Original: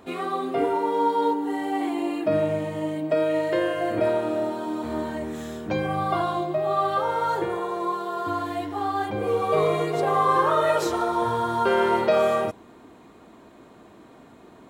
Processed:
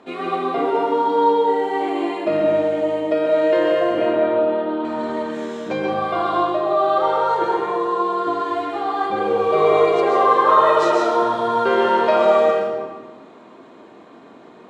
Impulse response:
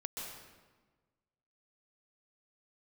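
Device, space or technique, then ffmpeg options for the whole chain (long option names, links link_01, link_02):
supermarket ceiling speaker: -filter_complex "[0:a]asettb=1/sr,asplit=3[link_01][link_02][link_03];[link_01]atrim=end=3.984[link_04];[link_02]atrim=start=3.98:end=4.85,asetpts=PTS-STARTPTS,afade=type=in:duration=0.004:curve=qsin,afade=type=out:start_time=0.866:duration=0.004:curve=qsin,lowpass=frequency=3500:width=0.5412,lowpass=frequency=3500:width=1.3066[link_05];[link_03]atrim=start=4.846[link_06];[link_04][link_05]acrossfade=duration=0.004:curve1=hsin:curve2=qsin[link_07];[link_07][link_06]acrossfade=duration=0.004:curve1=qsin:curve2=hsin,highpass=210,lowpass=5200[link_08];[1:a]atrim=start_sample=2205[link_09];[link_08][link_09]afir=irnorm=-1:irlink=0,volume=6dB"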